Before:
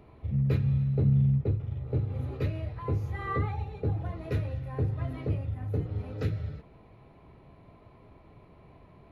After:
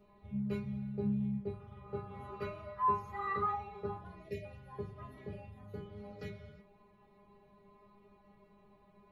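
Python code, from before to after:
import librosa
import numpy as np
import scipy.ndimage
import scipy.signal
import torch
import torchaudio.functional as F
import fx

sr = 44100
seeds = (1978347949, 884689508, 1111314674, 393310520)

y = fx.peak_eq(x, sr, hz=1200.0, db=14.5, octaves=0.76, at=(1.53, 4.0))
y = fx.spec_erase(y, sr, start_s=4.23, length_s=0.21, low_hz=690.0, high_hz=1700.0)
y = fx.stiff_resonator(y, sr, f0_hz=200.0, decay_s=0.31, stiffness=0.002)
y = y * librosa.db_to_amplitude(5.5)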